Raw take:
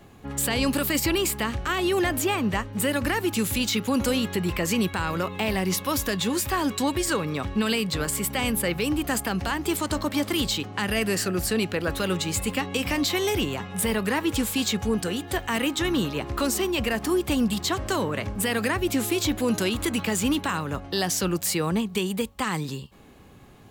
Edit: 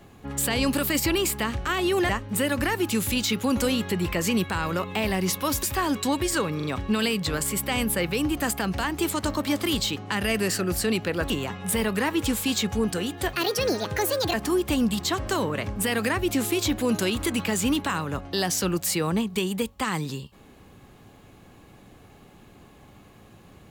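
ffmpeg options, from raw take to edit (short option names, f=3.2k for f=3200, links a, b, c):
-filter_complex "[0:a]asplit=8[a][b][c][d][e][f][g][h];[a]atrim=end=2.092[i];[b]atrim=start=2.528:end=6.072[j];[c]atrim=start=6.378:end=7.352[k];[d]atrim=start=7.308:end=7.352[l];[e]atrim=start=7.308:end=11.972[m];[f]atrim=start=13.398:end=15.434[n];[g]atrim=start=15.43:end=16.93,asetpts=PTS-STARTPTS,asetrate=65709,aresample=44100[o];[h]atrim=start=16.926[p];[i][j]acrossfade=d=0.004:c1=hsin:c2=hsin[q];[q][k]acrossfade=d=0.004:c1=hsin:c2=hsin[r];[r][l]acrossfade=d=0.004:c1=hsin:c2=hsin[s];[s][m]acrossfade=d=0.004:c1=hsin:c2=hsin[t];[t][n]acrossfade=d=0.004:c1=hsin:c2=hsin[u];[u][o]acrossfade=d=0.004:c1=hsin:c2=hsin[v];[v][p]acrossfade=d=0.004:c1=hsin:c2=hsin"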